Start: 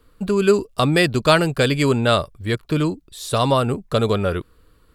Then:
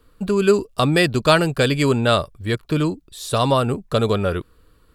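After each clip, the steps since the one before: band-stop 2.1 kHz, Q 26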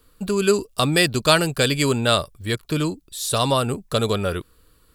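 treble shelf 3.8 kHz +11.5 dB; trim -3 dB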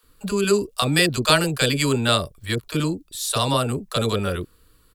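bands offset in time highs, lows 30 ms, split 630 Hz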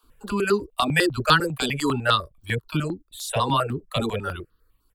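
reverb removal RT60 1.3 s; tone controls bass -2 dB, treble -10 dB; stepped phaser 10 Hz 510–2300 Hz; trim +4 dB

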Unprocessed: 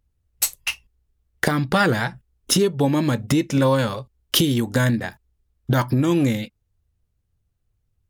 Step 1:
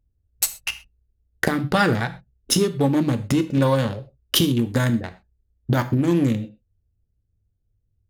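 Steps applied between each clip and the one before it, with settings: local Wiener filter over 41 samples; on a send at -9.5 dB: reverberation, pre-delay 3 ms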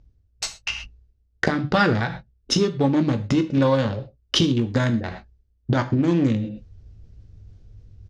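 Chebyshev low-pass 5.7 kHz, order 3; reverse; upward compressor, threshold -25 dBFS; reverse; doubling 19 ms -12 dB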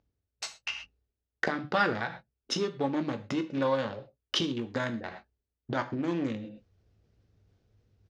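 high-pass 570 Hz 6 dB/octave; treble shelf 3.7 kHz -8.5 dB; trim -4 dB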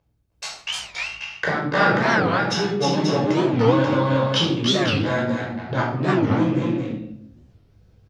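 on a send: multi-tap echo 303/319/535 ms -5.5/-3/-5 dB; on the sum: simulated room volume 920 m³, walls furnished, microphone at 5.3 m; warped record 45 rpm, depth 250 cents; trim +1.5 dB

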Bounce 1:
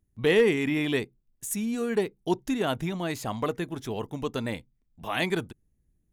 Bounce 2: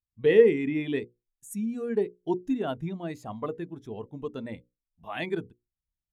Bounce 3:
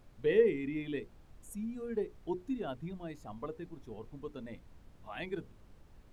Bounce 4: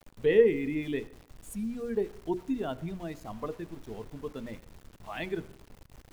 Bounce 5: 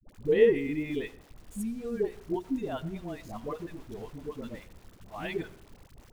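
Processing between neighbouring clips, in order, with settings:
hum notches 60/120/180/240/300/360/420/480/540 Hz; spectral contrast expander 1.5:1; trim +5 dB
added noise brown -46 dBFS; trim -8.5 dB
small samples zeroed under -54 dBFS; on a send at -19 dB: reverberation RT60 0.65 s, pre-delay 63 ms; on the sum: trim +5 dB
phase dispersion highs, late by 83 ms, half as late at 550 Hz

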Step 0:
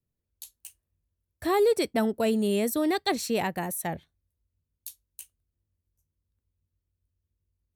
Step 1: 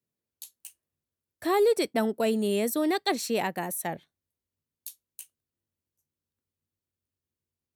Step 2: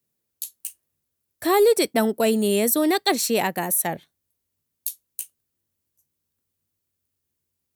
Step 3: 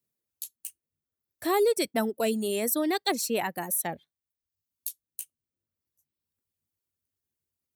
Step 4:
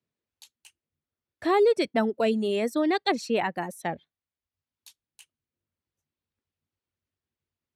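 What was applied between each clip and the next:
high-pass 190 Hz 12 dB/octave
treble shelf 7 kHz +9 dB; trim +5.5 dB
reverb removal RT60 0.79 s; trim -6 dB
low-pass 3.5 kHz 12 dB/octave; trim +3 dB

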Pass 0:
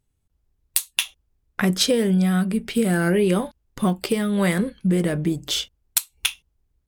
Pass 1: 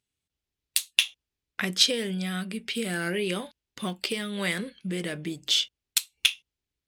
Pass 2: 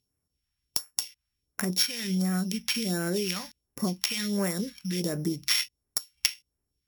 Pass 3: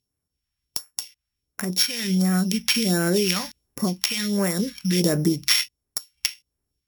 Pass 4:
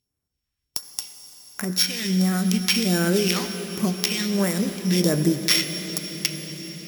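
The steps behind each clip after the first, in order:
frequency weighting D; trim -9.5 dB
sorted samples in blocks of 8 samples; compression 5:1, threshold -29 dBFS, peak gain reduction 13 dB; phase shifter stages 2, 1.4 Hz, lowest notch 380–3500 Hz; trim +5.5 dB
level rider gain up to 11 dB; trim -1 dB
reverberation RT60 6.0 s, pre-delay 62 ms, DRR 8 dB

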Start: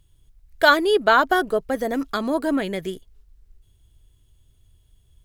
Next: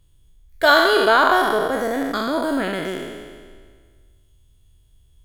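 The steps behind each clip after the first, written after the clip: spectral sustain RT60 1.72 s; trim -2 dB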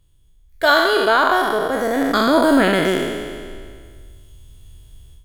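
level rider gain up to 13.5 dB; trim -1 dB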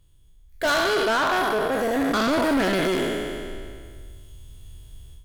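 saturation -18.5 dBFS, distortion -8 dB

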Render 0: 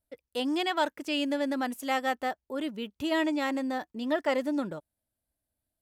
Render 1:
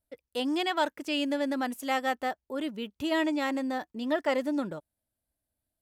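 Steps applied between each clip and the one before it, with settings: no audible change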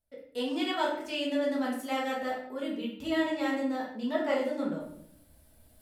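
reverse; upward compressor, threshold -39 dBFS; reverse; simulated room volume 130 m³, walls mixed, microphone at 1.5 m; trim -8 dB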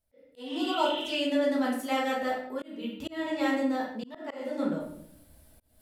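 spectral replace 0.48–1.10 s, 1.5–4.1 kHz before; slow attack 340 ms; trim +3 dB

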